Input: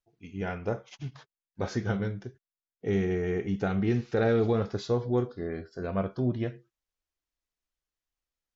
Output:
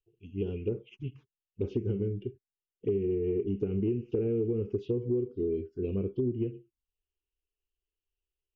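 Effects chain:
phaser swept by the level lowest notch 250 Hz, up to 3,700 Hz, full sweep at −26.5 dBFS
drawn EQ curve 110 Hz 0 dB, 160 Hz −6 dB, 410 Hz +7 dB, 650 Hz −25 dB, 1,100 Hz −22 dB, 1,800 Hz −26 dB, 2,800 Hz +5 dB, 4,200 Hz −24 dB
downward compressor, threshold −30 dBFS, peak gain reduction 10.5 dB
level +3.5 dB

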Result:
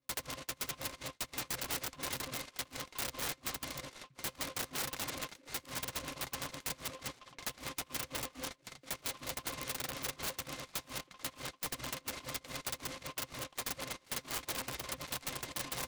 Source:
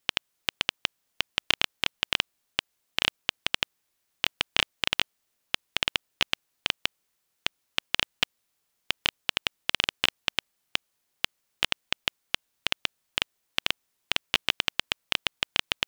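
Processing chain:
reverb whose tail is shaped and stops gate 260 ms rising, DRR 4.5 dB
brickwall limiter −10 dBFS, peak gain reduction 7.5 dB
treble cut that deepens with the level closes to 2,400 Hz, closed at −32.5 dBFS
transient designer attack +5 dB, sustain −6 dB
parametric band 13,000 Hz −14.5 dB 1.6 octaves
resonances in every octave C, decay 0.14 s
echo through a band-pass that steps 724 ms, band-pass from 2,700 Hz, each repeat −1.4 octaves, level −8.5 dB
reverb reduction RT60 0.52 s
wrap-around overflow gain 47.5 dB
high-pass filter 80 Hz
high-shelf EQ 5,100 Hz +9.5 dB
short delay modulated by noise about 1,800 Hz, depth 0.11 ms
level +13 dB

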